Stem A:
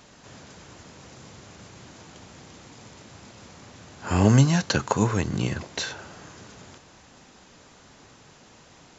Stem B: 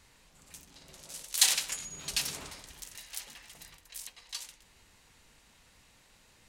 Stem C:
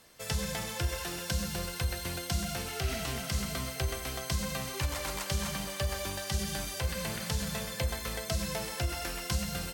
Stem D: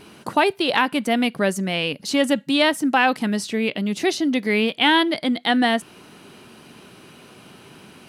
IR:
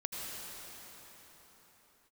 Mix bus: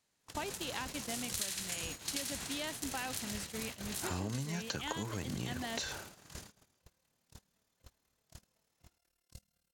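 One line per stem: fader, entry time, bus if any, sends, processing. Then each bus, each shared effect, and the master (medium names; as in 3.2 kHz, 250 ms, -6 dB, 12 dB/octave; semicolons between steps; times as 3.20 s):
-0.5 dB, 0.00 s, no send, treble shelf 2.1 kHz -2.5 dB; compression 1.5:1, threshold -38 dBFS, peak gain reduction 9.5 dB
-10.5 dB, 0.00 s, no send, spectral levelling over time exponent 0.6; peaking EQ 1.5 kHz +7.5 dB 1.3 oct
-12.0 dB, 0.00 s, no send, AM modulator 37 Hz, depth 80%
-19.5 dB, 0.00 s, no send, none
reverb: none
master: gate -41 dBFS, range -32 dB; treble shelf 4.2 kHz +8.5 dB; compression 6:1, threshold -35 dBFS, peak gain reduction 14 dB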